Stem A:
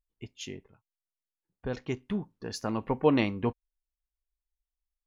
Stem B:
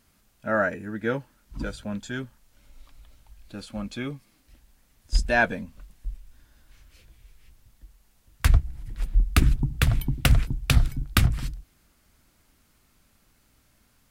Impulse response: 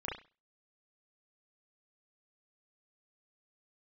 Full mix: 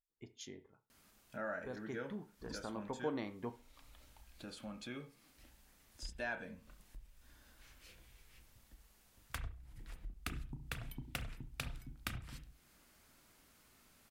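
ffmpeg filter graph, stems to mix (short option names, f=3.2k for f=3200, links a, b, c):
-filter_complex "[0:a]equalizer=f=2.7k:t=o:w=0.27:g=-14,volume=-5.5dB,asplit=2[a][b];[b]volume=-13.5dB[c];[1:a]acompressor=threshold=-45dB:ratio=1.5,adelay=900,volume=-3dB,asplit=2[d][e];[e]volume=-9dB[f];[2:a]atrim=start_sample=2205[g];[c][f]amix=inputs=2:normalize=0[h];[h][g]afir=irnorm=-1:irlink=0[i];[a][d][i]amix=inputs=3:normalize=0,lowshelf=f=150:g=-10,acompressor=threshold=-52dB:ratio=1.5"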